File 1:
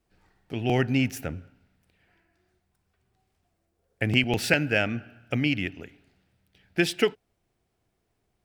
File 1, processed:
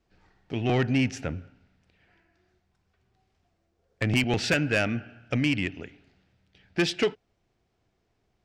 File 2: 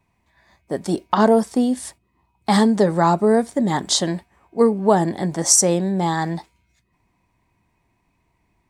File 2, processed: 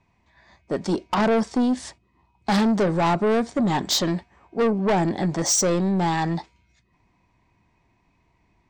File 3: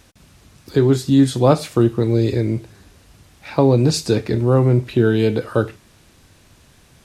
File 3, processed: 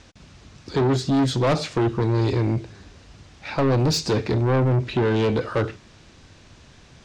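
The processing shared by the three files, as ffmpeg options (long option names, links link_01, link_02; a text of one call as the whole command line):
ffmpeg -i in.wav -af "lowpass=frequency=6700:width=0.5412,lowpass=frequency=6700:width=1.3066,asoftclip=type=tanh:threshold=-18.5dB,volume=2dB" out.wav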